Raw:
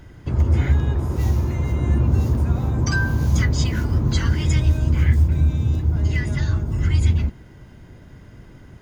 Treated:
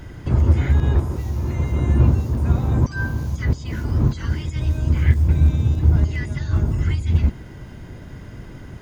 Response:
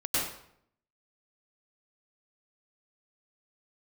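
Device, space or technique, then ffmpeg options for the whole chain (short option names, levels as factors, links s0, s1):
de-esser from a sidechain: -filter_complex "[0:a]asplit=2[s0][s1];[s1]highpass=f=4800:w=0.5412,highpass=f=4800:w=1.3066,apad=whole_len=388893[s2];[s0][s2]sidechaincompress=threshold=0.00126:ratio=3:attack=0.67:release=52,volume=2.11"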